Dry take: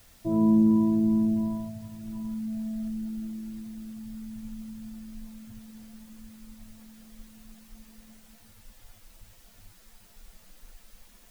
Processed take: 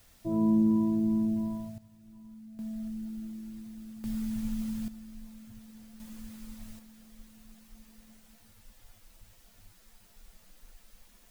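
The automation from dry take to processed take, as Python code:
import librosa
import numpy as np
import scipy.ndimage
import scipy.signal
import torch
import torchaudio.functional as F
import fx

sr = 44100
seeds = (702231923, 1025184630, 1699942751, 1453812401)

y = fx.gain(x, sr, db=fx.steps((0.0, -4.0), (1.78, -15.5), (2.59, -4.5), (4.04, 6.5), (4.88, -4.0), (6.0, 2.5), (6.79, -4.0)))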